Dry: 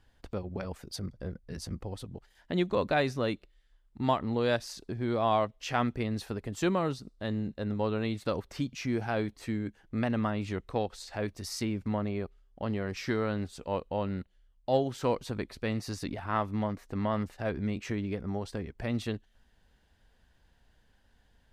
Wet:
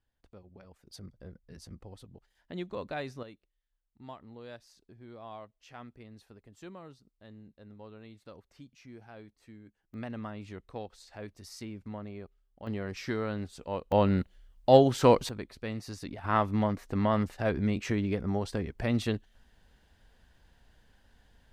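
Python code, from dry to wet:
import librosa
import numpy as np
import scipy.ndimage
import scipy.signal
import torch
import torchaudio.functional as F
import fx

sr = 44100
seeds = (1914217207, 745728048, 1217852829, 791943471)

y = fx.gain(x, sr, db=fx.steps((0.0, -17.0), (0.87, -9.5), (3.23, -18.5), (9.94, -9.5), (12.67, -2.5), (13.92, 8.0), (15.29, -4.5), (16.24, 3.5)))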